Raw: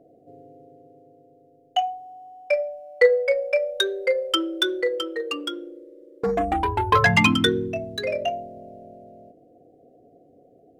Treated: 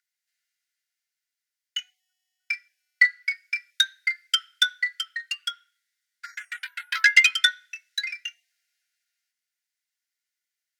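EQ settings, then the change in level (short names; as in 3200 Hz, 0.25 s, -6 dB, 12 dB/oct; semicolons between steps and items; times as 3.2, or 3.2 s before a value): rippled Chebyshev high-pass 1400 Hz, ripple 6 dB; +6.5 dB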